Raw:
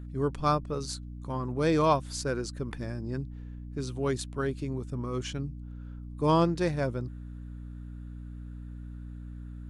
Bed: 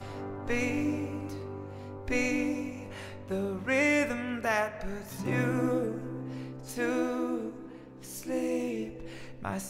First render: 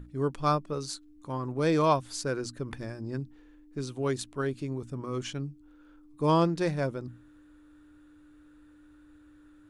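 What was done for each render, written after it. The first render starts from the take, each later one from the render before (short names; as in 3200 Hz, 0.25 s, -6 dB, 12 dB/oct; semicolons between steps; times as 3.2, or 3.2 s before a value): notches 60/120/180/240 Hz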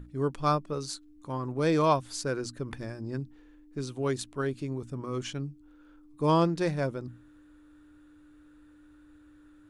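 nothing audible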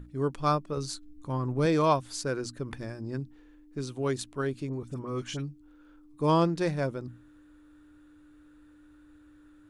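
0.77–1.66 low shelf 130 Hz +10.5 dB; 4.69–5.49 dispersion highs, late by 44 ms, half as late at 1700 Hz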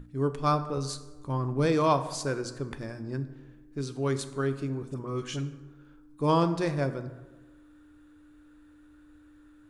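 plate-style reverb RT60 1.2 s, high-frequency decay 0.55×, DRR 9.5 dB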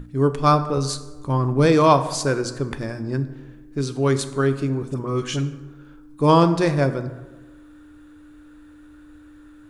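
gain +9 dB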